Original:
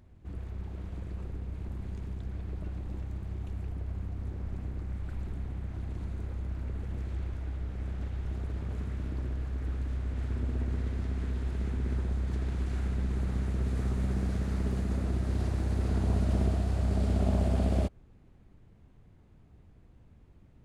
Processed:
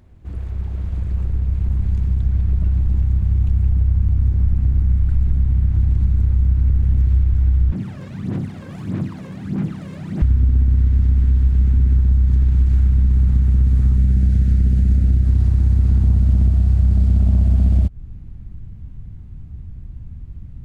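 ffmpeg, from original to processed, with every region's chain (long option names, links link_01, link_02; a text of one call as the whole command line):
ffmpeg -i in.wav -filter_complex "[0:a]asettb=1/sr,asplit=3[link_01][link_02][link_03];[link_01]atrim=end=7.724[link_04];[link_02]atrim=start=7.72:end=10.22,asetpts=PTS-STARTPTS,afade=type=in:duration=0.004:curve=qsin,afade=type=out:start_time=2.496:duration=0.004:curve=qsin,aeval=exprs='0.0119*(abs(mod(val(0)/0.0119+3,4)-2)-1)':channel_layout=same,highpass=frequency=130:width=0.5412,highpass=frequency=130:width=1.3066,aphaser=in_gain=1:out_gain=1:delay=1.9:decay=0.65:speed=1.6:type=sinusoidal[link_05];[link_03]atrim=start=10.216[link_06];[link_04][link_05]acrossfade=duration=0.004:curve1=hsin:curve2=qsin[link_07];[link_07][link_06]acrossfade=duration=0.004:curve1=qsin:curve2=hsin,asettb=1/sr,asplit=3[link_08][link_09][link_10];[link_08]atrim=end=13.974[link_11];[link_09]atrim=start=13.97:end=15.26,asetpts=PTS-STARTPTS,afade=type=in:duration=0.004:curve=qsin,afade=type=out:start_time=1.286:duration=0.004:curve=qsin,aeval=exprs='val(0)+0.00178*sin(2*PI*1100*n/s)':channel_layout=same,asuperstop=centerf=1000:order=4:qfactor=1.7[link_12];[link_10]atrim=start=15.256[link_13];[link_11][link_12]acrossfade=duration=0.004:curve1=hsin:curve2=qsin[link_14];[link_14][link_13]acrossfade=duration=0.004:curve1=qsin:curve2=hsin,asubboost=boost=8.5:cutoff=160,acompressor=threshold=-18dB:ratio=6,volume=7dB" out.wav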